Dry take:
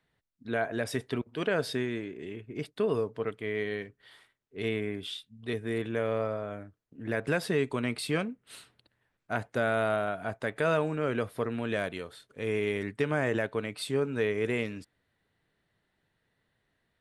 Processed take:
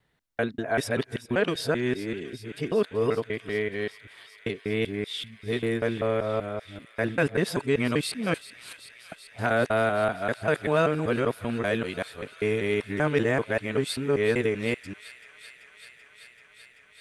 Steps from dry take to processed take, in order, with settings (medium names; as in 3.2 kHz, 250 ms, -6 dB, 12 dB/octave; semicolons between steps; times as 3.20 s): time reversed locally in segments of 194 ms; on a send: feedback echo behind a high-pass 385 ms, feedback 84%, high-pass 2.2 kHz, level -14 dB; on the sum: trim +4.5 dB